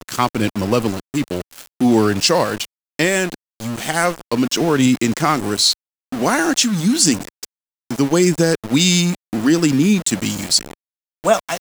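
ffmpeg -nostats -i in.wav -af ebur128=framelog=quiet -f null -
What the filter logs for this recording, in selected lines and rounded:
Integrated loudness:
  I:         -17.2 LUFS
  Threshold: -27.7 LUFS
Loudness range:
  LRA:         2.3 LU
  Threshold: -37.6 LUFS
  LRA low:   -18.9 LUFS
  LRA high:  -16.5 LUFS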